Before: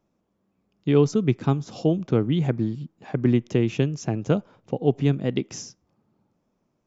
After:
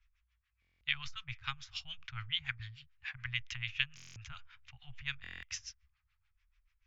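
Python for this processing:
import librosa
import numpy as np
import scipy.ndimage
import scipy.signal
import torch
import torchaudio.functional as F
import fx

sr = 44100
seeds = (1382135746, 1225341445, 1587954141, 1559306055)

y = scipy.signal.sosfilt(scipy.signal.cheby2(4, 80, [200.0, 530.0], 'bandstop', fs=sr, output='sos'), x)
y = fx.dynamic_eq(y, sr, hz=2100.0, q=1.2, threshold_db=-49.0, ratio=4.0, max_db=-4)
y = fx.filter_lfo_lowpass(y, sr, shape='sine', hz=6.9, low_hz=540.0, high_hz=2700.0, q=0.73)
y = fx.buffer_glitch(y, sr, at_s=(0.6, 3.95, 5.22), block=1024, repeats=8)
y = y * 10.0 ** (14.0 / 20.0)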